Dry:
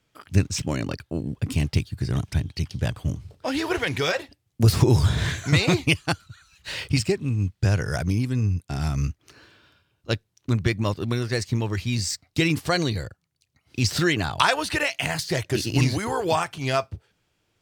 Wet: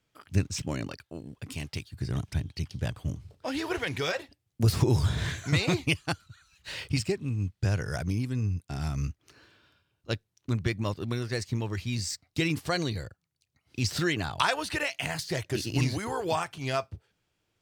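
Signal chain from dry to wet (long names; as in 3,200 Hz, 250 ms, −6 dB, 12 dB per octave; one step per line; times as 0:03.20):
0:00.87–0:01.94: low-shelf EQ 410 Hz −9.5 dB
level −6 dB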